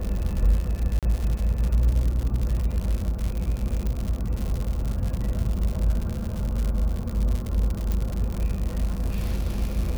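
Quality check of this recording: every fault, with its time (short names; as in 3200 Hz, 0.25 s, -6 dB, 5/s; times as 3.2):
crackle 140/s -27 dBFS
0.99–1.03 gap 37 ms
3.87 pop -17 dBFS
7.92 pop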